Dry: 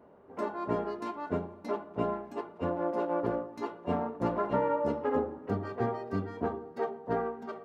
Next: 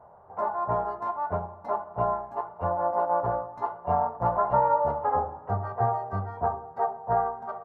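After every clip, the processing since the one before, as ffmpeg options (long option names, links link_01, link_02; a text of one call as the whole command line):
ffmpeg -i in.wav -af "firequalizer=gain_entry='entry(120,0);entry(260,-21);entry(740,6);entry(2500,-19)':delay=0.05:min_phase=1,volume=7dB" out.wav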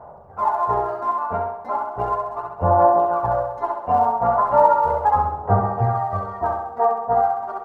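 ffmpeg -i in.wav -filter_complex "[0:a]aphaser=in_gain=1:out_gain=1:delay=4.3:decay=0.64:speed=0.36:type=sinusoidal,asplit=2[link_01][link_02];[link_02]aecho=0:1:66|132|198|264|330|396|462:0.631|0.334|0.177|0.0939|0.0498|0.0264|0.014[link_03];[link_01][link_03]amix=inputs=2:normalize=0,volume=2.5dB" out.wav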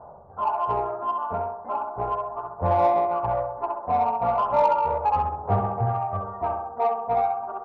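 ffmpeg -i in.wav -filter_complex "[0:a]lowpass=frequency=1400:width=0.5412,lowpass=frequency=1400:width=1.3066,asplit=2[link_01][link_02];[link_02]asoftclip=type=tanh:threshold=-17dB,volume=-4dB[link_03];[link_01][link_03]amix=inputs=2:normalize=0,volume=-7.5dB" out.wav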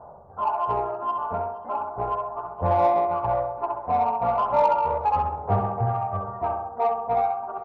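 ffmpeg -i in.wav -af "aecho=1:1:470:0.106" out.wav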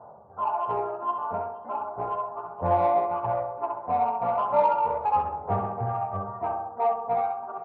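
ffmpeg -i in.wav -af "flanger=delay=8.9:depth=3.4:regen=69:speed=0.61:shape=sinusoidal,highpass=110,lowpass=3200,volume=2dB" out.wav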